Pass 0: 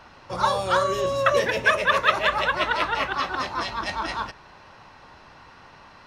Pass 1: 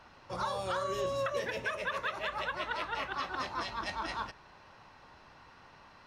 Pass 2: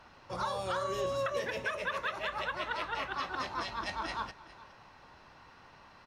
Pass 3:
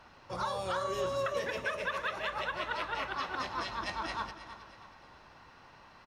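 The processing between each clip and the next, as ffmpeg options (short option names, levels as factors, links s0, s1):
-af "alimiter=limit=0.158:level=0:latency=1:release=243,volume=0.398"
-af "aecho=1:1:412:0.119"
-af "aecho=1:1:318|636|954|1272:0.224|0.094|0.0395|0.0166"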